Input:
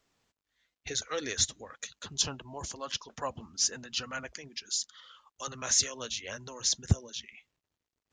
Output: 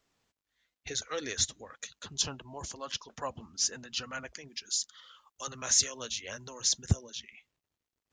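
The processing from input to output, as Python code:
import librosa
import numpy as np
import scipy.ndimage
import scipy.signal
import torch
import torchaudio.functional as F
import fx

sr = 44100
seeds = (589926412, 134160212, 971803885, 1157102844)

y = fx.high_shelf(x, sr, hz=8200.0, db=6.5, at=(4.48, 7.01))
y = y * 10.0 ** (-1.5 / 20.0)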